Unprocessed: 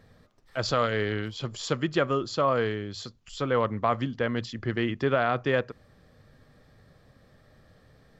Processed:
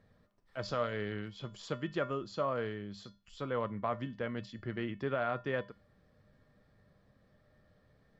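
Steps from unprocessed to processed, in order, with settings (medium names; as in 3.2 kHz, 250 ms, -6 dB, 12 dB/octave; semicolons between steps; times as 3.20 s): treble shelf 4.3 kHz -9 dB; feedback comb 200 Hz, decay 0.3 s, harmonics odd, mix 70%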